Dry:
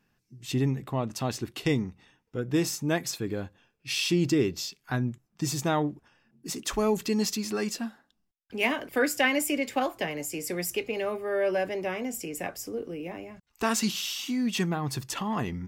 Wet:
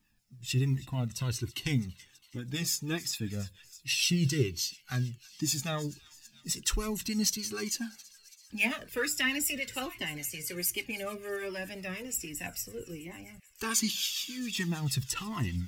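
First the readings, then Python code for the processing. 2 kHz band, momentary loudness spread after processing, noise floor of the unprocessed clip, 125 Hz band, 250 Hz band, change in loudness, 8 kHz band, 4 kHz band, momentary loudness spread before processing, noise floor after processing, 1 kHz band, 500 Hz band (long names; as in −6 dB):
−3.0 dB, 14 LU, −75 dBFS, 0.0 dB, −6.0 dB, −3.0 dB, +2.0 dB, +0.5 dB, 11 LU, −62 dBFS, −10.0 dB, −10.5 dB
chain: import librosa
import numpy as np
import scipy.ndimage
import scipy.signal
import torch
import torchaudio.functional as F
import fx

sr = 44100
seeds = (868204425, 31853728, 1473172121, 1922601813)

p1 = fx.spec_ripple(x, sr, per_octave=2.0, drift_hz=0.35, depth_db=8)
p2 = p1 + fx.echo_wet_highpass(p1, sr, ms=330, feedback_pct=68, hz=2400.0, wet_db=-18.0, dry=0)
p3 = fx.harmonic_tremolo(p2, sr, hz=6.8, depth_pct=50, crossover_hz=870.0)
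p4 = fx.peak_eq(p3, sr, hz=670.0, db=-14.5, octaves=2.3)
p5 = fx.quant_companded(p4, sr, bits=8)
p6 = fx.comb_cascade(p5, sr, direction='falling', hz=1.3)
y = p6 * 10.0 ** (8.0 / 20.0)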